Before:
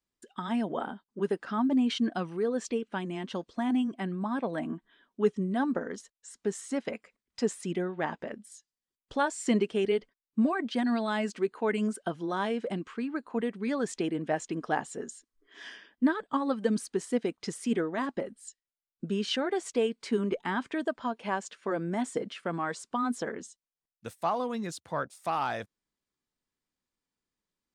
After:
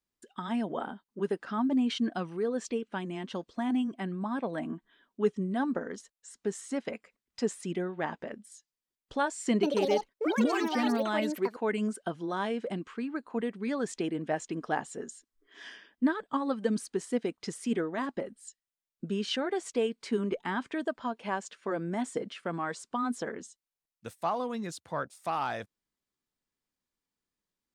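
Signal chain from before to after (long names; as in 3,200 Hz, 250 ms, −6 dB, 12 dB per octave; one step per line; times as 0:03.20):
0:09.49–0:12.23: delay with pitch and tempo change per echo 138 ms, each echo +6 semitones, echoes 2
level −1.5 dB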